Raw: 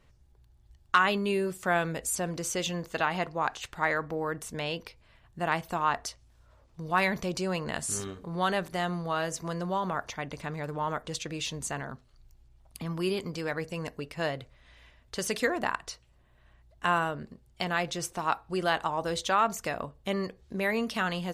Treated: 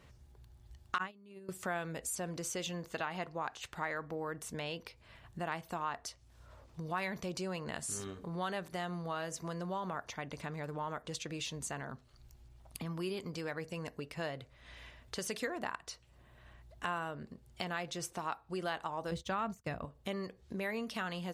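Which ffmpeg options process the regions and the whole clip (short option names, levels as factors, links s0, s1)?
-filter_complex "[0:a]asettb=1/sr,asplit=3[s0][s1][s2];[s0]atrim=end=0.984[s3];[s1]atrim=start=0.98:end=1.49,asetpts=PTS-STARTPTS,afade=t=in:d=0.004:c=qsin,afade=t=out:st=0.506:d=0.004:c=qsin,agate=range=0.0398:threshold=0.0631:ratio=16:release=100:detection=peak,equalizer=f=220:w=1.1:g=6.5[s4];[s2]atrim=start=1.486[s5];[s3][s4]acrossfade=d=0.004:c1=hsin:c2=qsin[s6];[s6][s5]acrossfade=d=0.004:c1=qsin:c2=hsin,asettb=1/sr,asplit=3[s7][s8][s9];[s7]atrim=end=19.114[s10];[s8]atrim=start=19.11:end=19.85,asetpts=PTS-STARTPTS,afade=t=in:d=0.004:c=qsin,afade=t=out:st=0.736:d=0.004:c=qsin,deesser=0.75,agate=range=0.0224:threshold=0.0224:ratio=3:release=100:detection=peak,bass=f=250:g=13,treble=f=4000:g=-2[s11];[s9]atrim=start=19.846[s12];[s10][s11]acrossfade=d=0.004:c1=hsin:c2=qsin[s13];[s13][s12]acrossfade=d=0.004:c1=qsin:c2=hsin,highpass=52,acompressor=threshold=0.00282:ratio=2,volume=1.68"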